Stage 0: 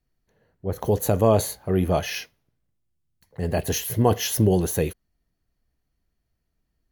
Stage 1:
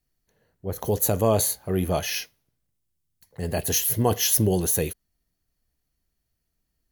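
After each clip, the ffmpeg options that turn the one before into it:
-af "highshelf=f=4100:g=11,volume=0.708"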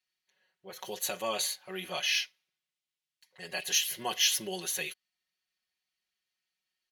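-af "bandpass=f=2900:t=q:w=1.4:csg=0,aecho=1:1:5.4:0.97,volume=1.19"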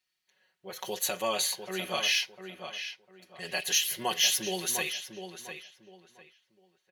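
-filter_complex "[0:a]asplit=2[s0][s1];[s1]alimiter=limit=0.0668:level=0:latency=1:release=198,volume=0.75[s2];[s0][s2]amix=inputs=2:normalize=0,asplit=2[s3][s4];[s4]adelay=701,lowpass=f=3000:p=1,volume=0.398,asplit=2[s5][s6];[s6]adelay=701,lowpass=f=3000:p=1,volume=0.27,asplit=2[s7][s8];[s8]adelay=701,lowpass=f=3000:p=1,volume=0.27[s9];[s3][s5][s7][s9]amix=inputs=4:normalize=0,volume=0.891"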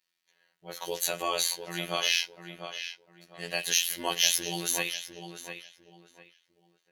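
-af "afftfilt=real='hypot(re,im)*cos(PI*b)':imag='0':win_size=2048:overlap=0.75,volume=1.58"

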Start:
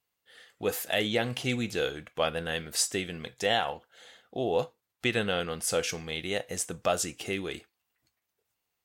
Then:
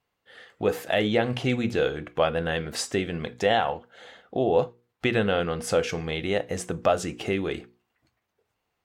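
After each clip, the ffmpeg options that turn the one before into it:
-filter_complex "[0:a]lowpass=f=1400:p=1,bandreject=f=60:t=h:w=6,bandreject=f=120:t=h:w=6,bandreject=f=180:t=h:w=6,bandreject=f=240:t=h:w=6,bandreject=f=300:t=h:w=6,bandreject=f=360:t=h:w=6,bandreject=f=420:t=h:w=6,bandreject=f=480:t=h:w=6,asplit=2[s0][s1];[s1]acompressor=threshold=0.0126:ratio=6,volume=0.891[s2];[s0][s2]amix=inputs=2:normalize=0,volume=1.78"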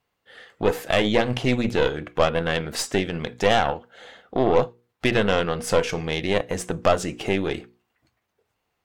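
-af "aeval=exprs='0.398*(cos(1*acos(clip(val(0)/0.398,-1,1)))-cos(1*PI/2))+0.0447*(cos(6*acos(clip(val(0)/0.398,-1,1)))-cos(6*PI/2))':c=same,volume=1.33"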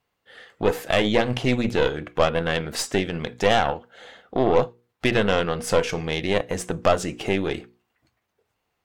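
-af anull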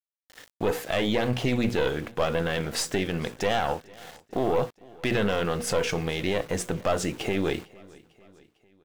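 -af "alimiter=limit=0.188:level=0:latency=1:release=14,aeval=exprs='val(0)*gte(abs(val(0)),0.00841)':c=same,aecho=1:1:451|902|1353:0.0631|0.0341|0.0184"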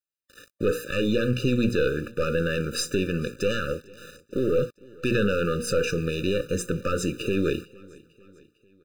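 -af "afftfilt=real='re*eq(mod(floor(b*sr/1024/590),2),0)':imag='im*eq(mod(floor(b*sr/1024/590),2),0)':win_size=1024:overlap=0.75,volume=1.33"

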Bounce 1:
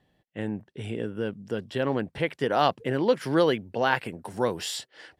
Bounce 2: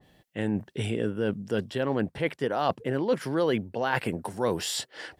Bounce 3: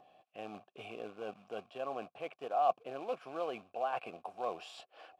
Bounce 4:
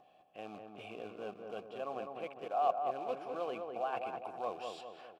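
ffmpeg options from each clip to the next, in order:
-af "highshelf=f=3700:g=6.5,areverse,acompressor=threshold=0.0251:ratio=4,areverse,adynamicequalizer=threshold=0.00224:dfrequency=1800:dqfactor=0.7:tfrequency=1800:tqfactor=0.7:attack=5:release=100:ratio=0.375:range=3.5:mode=cutabove:tftype=highshelf,volume=2.51"
-filter_complex "[0:a]acrusher=bits=3:mode=log:mix=0:aa=0.000001,asplit=3[s0][s1][s2];[s0]bandpass=f=730:t=q:w=8,volume=1[s3];[s1]bandpass=f=1090:t=q:w=8,volume=0.501[s4];[s2]bandpass=f=2440:t=q:w=8,volume=0.355[s5];[s3][s4][s5]amix=inputs=3:normalize=0,acompressor=mode=upward:threshold=0.00178:ratio=2.5,volume=1.12"
-filter_complex "[0:a]asplit=2[s0][s1];[s1]adelay=203,lowpass=f=1300:p=1,volume=0.631,asplit=2[s2][s3];[s3]adelay=203,lowpass=f=1300:p=1,volume=0.55,asplit=2[s4][s5];[s5]adelay=203,lowpass=f=1300:p=1,volume=0.55,asplit=2[s6][s7];[s7]adelay=203,lowpass=f=1300:p=1,volume=0.55,asplit=2[s8][s9];[s9]adelay=203,lowpass=f=1300:p=1,volume=0.55,asplit=2[s10][s11];[s11]adelay=203,lowpass=f=1300:p=1,volume=0.55,asplit=2[s12][s13];[s13]adelay=203,lowpass=f=1300:p=1,volume=0.55[s14];[s0][s2][s4][s6][s8][s10][s12][s14]amix=inputs=8:normalize=0,volume=0.841"

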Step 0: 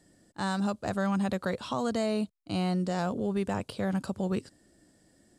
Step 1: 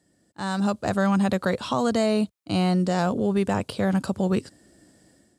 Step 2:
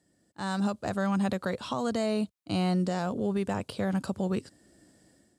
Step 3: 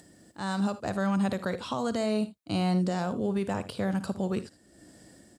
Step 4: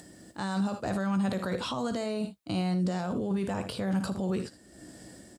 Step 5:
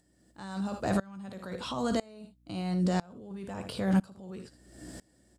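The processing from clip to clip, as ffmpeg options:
-af "highpass=51,dynaudnorm=f=340:g=3:m=3.55,volume=0.631"
-af "alimiter=limit=0.168:level=0:latency=1:release=427,volume=0.631"
-af "acompressor=mode=upward:threshold=0.00631:ratio=2.5,aecho=1:1:56|78:0.178|0.133"
-filter_complex "[0:a]alimiter=level_in=1.58:limit=0.0631:level=0:latency=1:release=14,volume=0.631,asplit=2[s0][s1];[s1]adelay=16,volume=0.266[s2];[s0][s2]amix=inputs=2:normalize=0,volume=1.68"
-af "aeval=exprs='val(0)+0.002*(sin(2*PI*60*n/s)+sin(2*PI*2*60*n/s)/2+sin(2*PI*3*60*n/s)/3+sin(2*PI*4*60*n/s)/4+sin(2*PI*5*60*n/s)/5)':c=same,aeval=exprs='val(0)*pow(10,-26*if(lt(mod(-1*n/s,1),2*abs(-1)/1000),1-mod(-1*n/s,1)/(2*abs(-1)/1000),(mod(-1*n/s,1)-2*abs(-1)/1000)/(1-2*abs(-1)/1000))/20)':c=same,volume=1.78"

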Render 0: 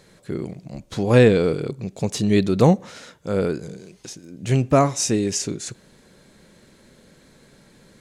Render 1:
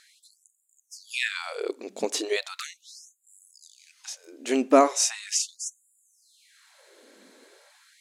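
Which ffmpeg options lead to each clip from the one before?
-af "afftfilt=real='re*gte(b*sr/1024,210*pow(7000/210,0.5+0.5*sin(2*PI*0.38*pts/sr)))':imag='im*gte(b*sr/1024,210*pow(7000/210,0.5+0.5*sin(2*PI*0.38*pts/sr)))':win_size=1024:overlap=0.75"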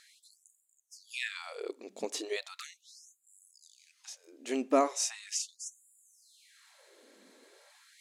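-af "bandreject=f=1500:w=18,areverse,acompressor=mode=upward:threshold=0.00562:ratio=2.5,areverse,volume=0.376"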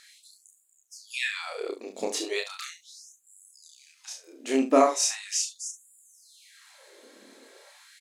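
-af "aecho=1:1:30|71:0.708|0.282,volume=1.78"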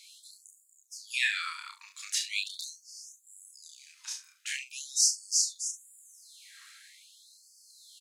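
-af "afftfilt=real='re*gte(b*sr/1024,860*pow(4400/860,0.5+0.5*sin(2*PI*0.43*pts/sr)))':imag='im*gte(b*sr/1024,860*pow(4400/860,0.5+0.5*sin(2*PI*0.43*pts/sr)))':win_size=1024:overlap=0.75,volume=1.26"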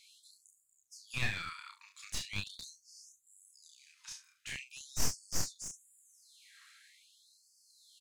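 -af "aeval=exprs='clip(val(0),-1,0.0316)':c=same,bass=f=250:g=15,treble=f=4000:g=-4,volume=0.531"

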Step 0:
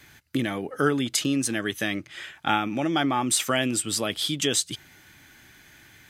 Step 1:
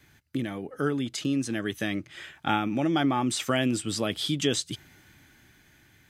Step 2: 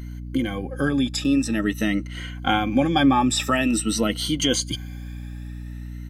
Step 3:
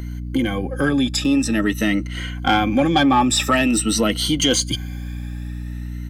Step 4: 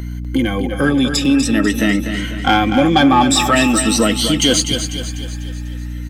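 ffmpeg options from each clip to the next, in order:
-filter_complex "[0:a]acrossover=split=7400[s0][s1];[s1]acompressor=threshold=0.01:ratio=4:attack=1:release=60[s2];[s0][s2]amix=inputs=2:normalize=0,lowshelf=f=480:g=6.5,dynaudnorm=f=270:g=11:m=3.76,volume=0.355"
-af "afftfilt=real='re*pow(10,16/40*sin(2*PI*(1.9*log(max(b,1)*sr/1024/100)/log(2)-(0.48)*(pts-256)/sr)))':imag='im*pow(10,16/40*sin(2*PI*(1.9*log(max(b,1)*sr/1024/100)/log(2)-(0.48)*(pts-256)/sr)))':win_size=1024:overlap=0.75,aecho=1:1:3.8:0.42,aeval=exprs='val(0)+0.0178*(sin(2*PI*60*n/s)+sin(2*PI*2*60*n/s)/2+sin(2*PI*3*60*n/s)/3+sin(2*PI*4*60*n/s)/4+sin(2*PI*5*60*n/s)/5)':c=same,volume=1.33"
-filter_complex "[0:a]acrossover=split=330[s0][s1];[s0]alimiter=limit=0.0944:level=0:latency=1[s2];[s2][s1]amix=inputs=2:normalize=0,asoftclip=type=tanh:threshold=0.251,volume=1.88"
-af "aecho=1:1:247|494|741|988|1235|1482:0.376|0.184|0.0902|0.0442|0.0217|0.0106,volume=1.5"

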